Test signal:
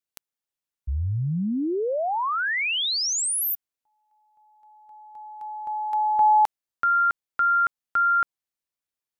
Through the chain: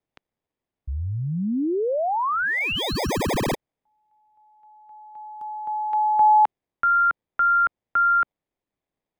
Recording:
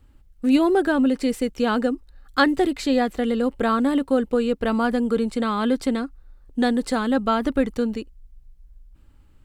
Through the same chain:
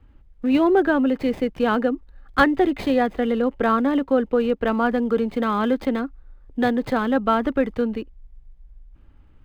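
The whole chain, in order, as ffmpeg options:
-filter_complex "[0:a]acrossover=split=280|860|3500[s0][s1][s2][s3];[s0]alimiter=level_in=1.26:limit=0.0631:level=0:latency=1:release=183,volume=0.794[s4];[s3]acrusher=samples=31:mix=1:aa=0.000001[s5];[s4][s1][s2][s5]amix=inputs=4:normalize=0,volume=1.26"

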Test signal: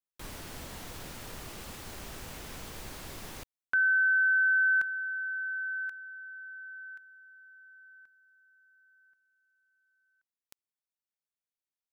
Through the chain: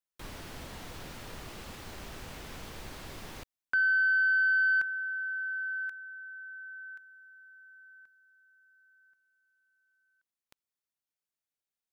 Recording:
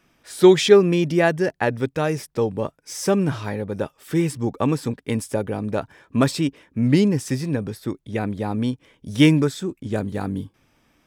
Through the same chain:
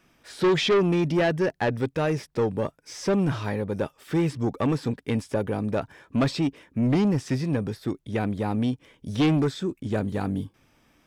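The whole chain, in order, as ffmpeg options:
-filter_complex "[0:a]aeval=exprs='(tanh(7.08*val(0)+0.05)-tanh(0.05))/7.08':c=same,acrossover=split=5400[s0][s1];[s1]acompressor=threshold=0.00224:ratio=4:attack=1:release=60[s2];[s0][s2]amix=inputs=2:normalize=0"

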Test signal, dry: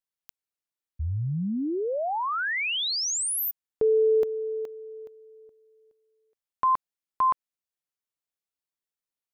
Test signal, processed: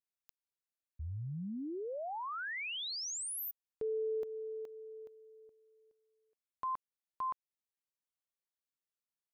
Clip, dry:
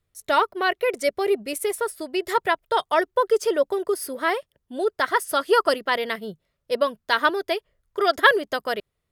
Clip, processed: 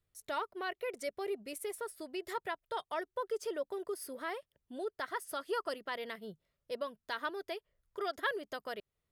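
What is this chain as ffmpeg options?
-af "acompressor=threshold=0.0112:ratio=1.5:attack=0.2:release=181:detection=rms,volume=0.422"

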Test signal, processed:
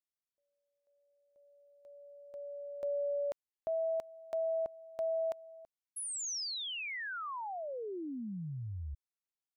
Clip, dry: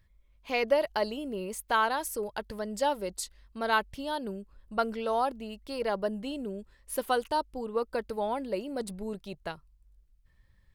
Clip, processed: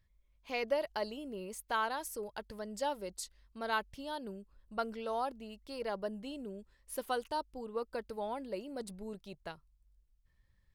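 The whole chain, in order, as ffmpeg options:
-af "equalizer=f=5700:w=1.5:g=2.5,volume=0.422"

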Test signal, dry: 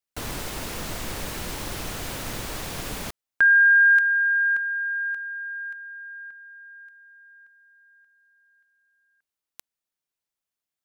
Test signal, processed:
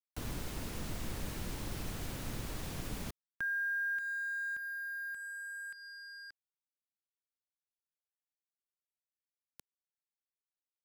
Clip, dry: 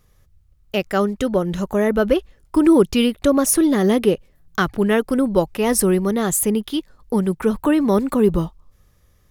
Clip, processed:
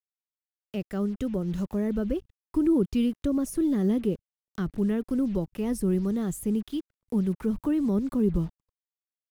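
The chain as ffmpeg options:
-filter_complex "[0:a]acrusher=bits=5:mix=0:aa=0.5,acrossover=split=320[s0][s1];[s1]acompressor=threshold=0.00794:ratio=2:attack=0.39:release=334:knee=2.83:detection=peak[s2];[s0][s2]amix=inputs=2:normalize=0,volume=0.596"

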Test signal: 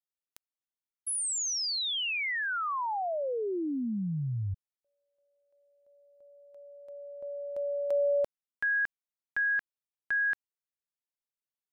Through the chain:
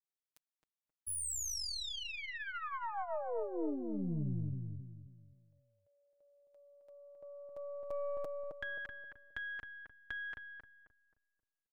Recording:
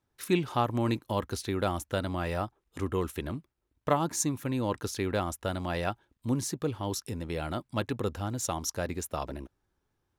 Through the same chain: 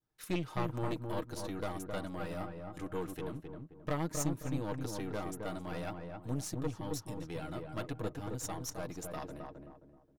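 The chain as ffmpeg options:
-filter_complex "[0:a]aecho=1:1:6.4:0.52,adynamicequalizer=threshold=0.00562:dfrequency=2300:dqfactor=0.74:tfrequency=2300:tqfactor=0.74:attack=5:release=100:ratio=0.375:range=3:mode=cutabove:tftype=bell,aeval=exprs='(tanh(14.1*val(0)+0.7)-tanh(0.7))/14.1':c=same,asplit=2[s0][s1];[s1]adelay=265,lowpass=f=1200:p=1,volume=0.668,asplit=2[s2][s3];[s3]adelay=265,lowpass=f=1200:p=1,volume=0.38,asplit=2[s4][s5];[s5]adelay=265,lowpass=f=1200:p=1,volume=0.38,asplit=2[s6][s7];[s7]adelay=265,lowpass=f=1200:p=1,volume=0.38,asplit=2[s8][s9];[s9]adelay=265,lowpass=f=1200:p=1,volume=0.38[s10];[s0][s2][s4][s6][s8][s10]amix=inputs=6:normalize=0,volume=0.596"

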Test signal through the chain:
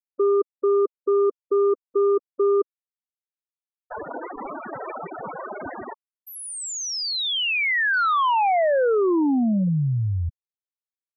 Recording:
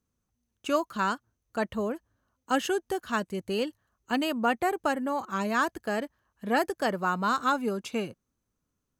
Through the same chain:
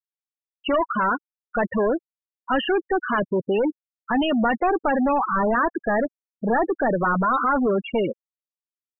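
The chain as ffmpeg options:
-filter_complex "[0:a]asplit=2[s0][s1];[s1]highpass=f=720:p=1,volume=44.7,asoftclip=type=tanh:threshold=0.237[s2];[s0][s2]amix=inputs=2:normalize=0,lowpass=f=1900:p=1,volume=0.501,afftfilt=real='re*gte(hypot(re,im),0.158)':imag='im*gte(hypot(re,im),0.158)':win_size=1024:overlap=0.75"

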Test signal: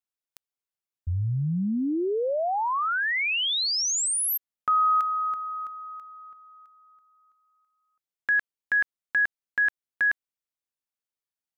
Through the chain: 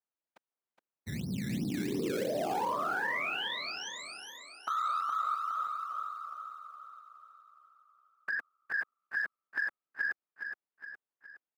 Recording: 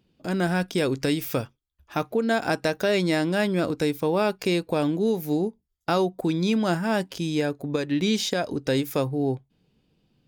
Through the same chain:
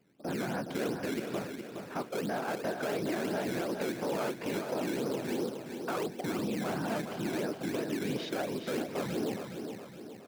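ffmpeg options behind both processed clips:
-filter_complex "[0:a]afftfilt=real='hypot(re,im)*cos(2*PI*random(0))':imag='hypot(re,im)*sin(2*PI*random(1))':win_size=512:overlap=0.75,acrossover=split=590|1100[s0][s1][s2];[s0]acrusher=samples=16:mix=1:aa=0.000001:lfo=1:lforange=16:lforate=2.9[s3];[s2]lowpass=1600[s4];[s3][s1][s4]amix=inputs=3:normalize=0,asoftclip=type=tanh:threshold=0.0596,highpass=200,acompressor=threshold=0.0112:ratio=4:attack=2:release=53:knee=6,aecho=1:1:416|832|1248|1664|2080|2496:0.447|0.219|0.107|0.0526|0.0258|0.0126,volume=2.51"

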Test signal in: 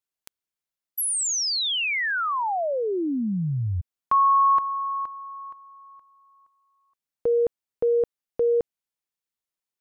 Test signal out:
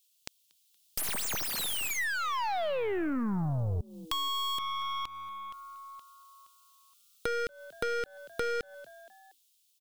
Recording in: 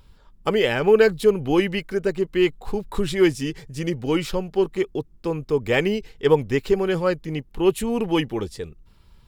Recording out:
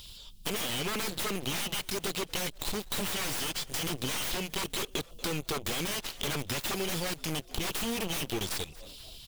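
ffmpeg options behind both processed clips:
-filter_complex "[0:a]dynaudnorm=f=210:g=9:m=2,highshelf=f=2300:t=q:w=1.5:g=12.5,aexciter=amount=3.5:drive=5.2:freq=2600,alimiter=limit=0.841:level=0:latency=1:release=17,aeval=exprs='0.158*(abs(mod(val(0)/0.158+3,4)-2)-1)':c=same,asplit=4[s0][s1][s2][s3];[s1]adelay=235,afreqshift=100,volume=0.0668[s4];[s2]adelay=470,afreqshift=200,volume=0.0347[s5];[s3]adelay=705,afreqshift=300,volume=0.018[s6];[s0][s4][s5][s6]amix=inputs=4:normalize=0,aeval=exprs='0.188*(cos(1*acos(clip(val(0)/0.188,-1,1)))-cos(1*PI/2))+0.0237*(cos(4*acos(clip(val(0)/0.188,-1,1)))-cos(4*PI/2))+0.0473*(cos(7*acos(clip(val(0)/0.188,-1,1)))-cos(7*PI/2))':c=same,bass=f=250:g=2,treble=f=4000:g=-5,acompressor=threshold=0.00708:ratio=2:attack=82:release=105:detection=rms"

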